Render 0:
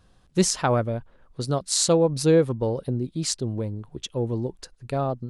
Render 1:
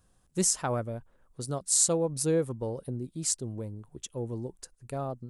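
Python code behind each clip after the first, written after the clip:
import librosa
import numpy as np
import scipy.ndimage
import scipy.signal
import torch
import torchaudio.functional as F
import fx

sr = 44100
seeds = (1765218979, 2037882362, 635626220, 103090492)

y = fx.curve_eq(x, sr, hz=(1300.0, 4200.0, 7900.0), db=(0, -3, 11))
y = y * librosa.db_to_amplitude(-8.5)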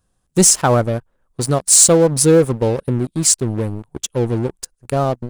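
y = fx.leveller(x, sr, passes=3)
y = y * librosa.db_to_amplitude(5.0)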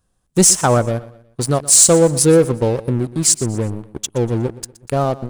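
y = fx.echo_feedback(x, sr, ms=121, feedback_pct=40, wet_db=-18.0)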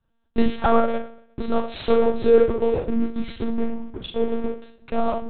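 y = fx.rev_schroeder(x, sr, rt60_s=0.31, comb_ms=29, drr_db=1.5)
y = fx.lpc_monotone(y, sr, seeds[0], pitch_hz=230.0, order=10)
y = y * librosa.db_to_amplitude(-5.0)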